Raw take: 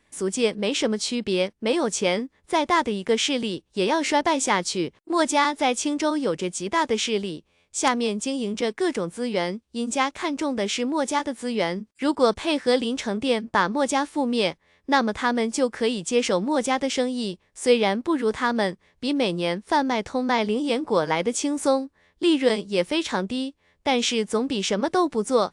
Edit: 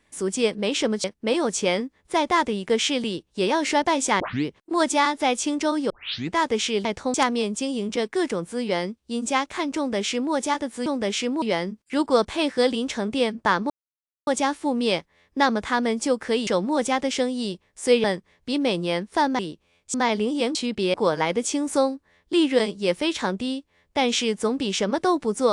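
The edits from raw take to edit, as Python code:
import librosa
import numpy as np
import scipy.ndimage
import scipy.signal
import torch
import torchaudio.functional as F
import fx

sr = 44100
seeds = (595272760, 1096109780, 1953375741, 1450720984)

y = fx.edit(x, sr, fx.move(start_s=1.04, length_s=0.39, to_s=20.84),
    fx.tape_start(start_s=4.59, length_s=0.25),
    fx.tape_start(start_s=6.29, length_s=0.45),
    fx.swap(start_s=7.24, length_s=0.55, other_s=19.94, other_length_s=0.29),
    fx.duplicate(start_s=10.42, length_s=0.56, to_s=11.51),
    fx.insert_silence(at_s=13.79, length_s=0.57),
    fx.cut(start_s=15.99, length_s=0.27),
    fx.cut(start_s=17.83, length_s=0.76), tone=tone)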